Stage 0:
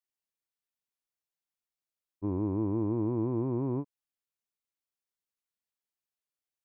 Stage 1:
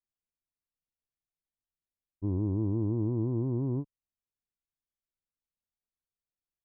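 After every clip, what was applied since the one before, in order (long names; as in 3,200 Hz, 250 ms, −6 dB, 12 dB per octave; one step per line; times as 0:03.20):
spectral tilt −4 dB per octave
level −8.5 dB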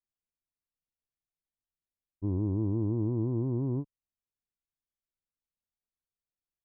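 no processing that can be heard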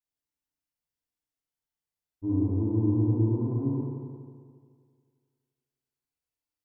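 feedback delay network reverb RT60 2 s, low-frequency decay 0.9×, high-frequency decay 0.95×, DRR −7.5 dB
level −6 dB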